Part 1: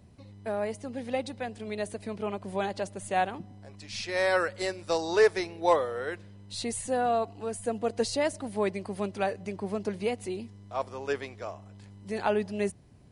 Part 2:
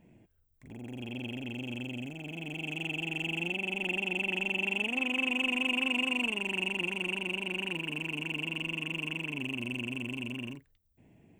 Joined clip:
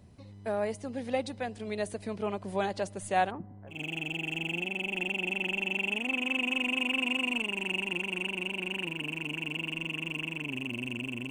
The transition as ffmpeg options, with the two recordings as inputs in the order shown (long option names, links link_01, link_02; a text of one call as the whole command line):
ffmpeg -i cue0.wav -i cue1.wav -filter_complex "[0:a]asplit=3[link_01][link_02][link_03];[link_01]afade=type=out:start_time=3.3:duration=0.02[link_04];[link_02]lowpass=frequency=1700:width=0.5412,lowpass=frequency=1700:width=1.3066,afade=type=in:start_time=3.3:duration=0.02,afade=type=out:start_time=3.81:duration=0.02[link_05];[link_03]afade=type=in:start_time=3.81:duration=0.02[link_06];[link_04][link_05][link_06]amix=inputs=3:normalize=0,apad=whole_dur=11.3,atrim=end=11.3,atrim=end=3.81,asetpts=PTS-STARTPTS[link_07];[1:a]atrim=start=2.55:end=10.18,asetpts=PTS-STARTPTS[link_08];[link_07][link_08]acrossfade=duration=0.14:curve1=tri:curve2=tri" out.wav